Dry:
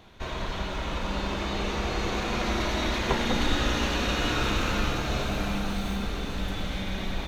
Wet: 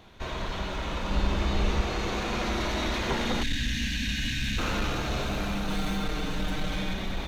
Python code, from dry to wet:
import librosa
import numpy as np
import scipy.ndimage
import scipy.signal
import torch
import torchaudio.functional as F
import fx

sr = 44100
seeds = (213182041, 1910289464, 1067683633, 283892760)

y = fx.spec_box(x, sr, start_s=3.43, length_s=1.15, low_hz=280.0, high_hz=1500.0, gain_db=-29)
y = fx.comb(y, sr, ms=6.5, depth=0.95, at=(5.68, 6.94))
y = 10.0 ** (-20.5 / 20.0) * np.tanh(y / 10.0 ** (-20.5 / 20.0))
y = fx.low_shelf(y, sr, hz=120.0, db=10.5, at=(1.11, 1.81))